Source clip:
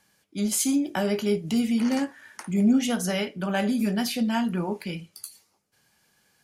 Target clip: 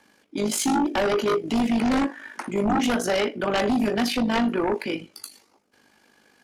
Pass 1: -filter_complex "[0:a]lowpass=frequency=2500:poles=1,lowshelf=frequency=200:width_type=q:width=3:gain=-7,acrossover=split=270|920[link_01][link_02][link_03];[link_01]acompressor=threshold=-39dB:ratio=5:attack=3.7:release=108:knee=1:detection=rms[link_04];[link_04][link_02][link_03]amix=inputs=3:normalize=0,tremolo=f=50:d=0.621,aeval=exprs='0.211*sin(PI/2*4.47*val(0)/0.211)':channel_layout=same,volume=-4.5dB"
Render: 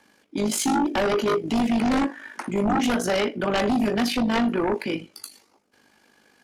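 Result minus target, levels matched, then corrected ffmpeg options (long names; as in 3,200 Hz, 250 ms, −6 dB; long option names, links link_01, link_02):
downward compressor: peak gain reduction −6 dB
-filter_complex "[0:a]lowpass=frequency=2500:poles=1,lowshelf=frequency=200:width_type=q:width=3:gain=-7,acrossover=split=270|920[link_01][link_02][link_03];[link_01]acompressor=threshold=-46.5dB:ratio=5:attack=3.7:release=108:knee=1:detection=rms[link_04];[link_04][link_02][link_03]amix=inputs=3:normalize=0,tremolo=f=50:d=0.621,aeval=exprs='0.211*sin(PI/2*4.47*val(0)/0.211)':channel_layout=same,volume=-4.5dB"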